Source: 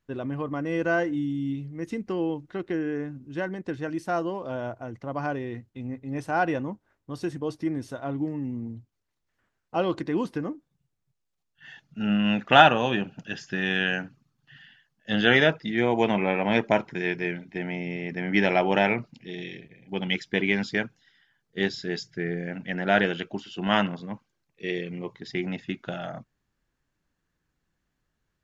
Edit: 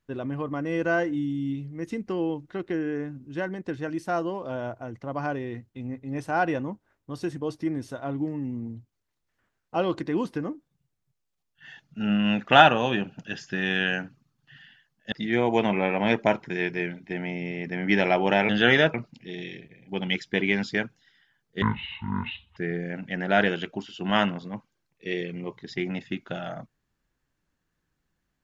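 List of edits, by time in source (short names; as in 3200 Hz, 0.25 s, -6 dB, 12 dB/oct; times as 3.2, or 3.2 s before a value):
15.12–15.57 move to 18.94
21.62–22.14 speed 55%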